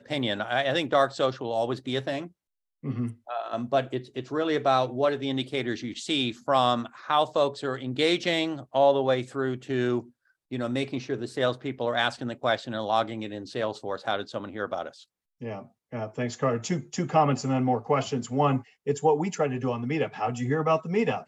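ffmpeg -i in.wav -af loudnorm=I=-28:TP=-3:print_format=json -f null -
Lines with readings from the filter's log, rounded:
"input_i" : "-27.3",
"input_tp" : "-8.4",
"input_lra" : "4.4",
"input_thresh" : "-37.6",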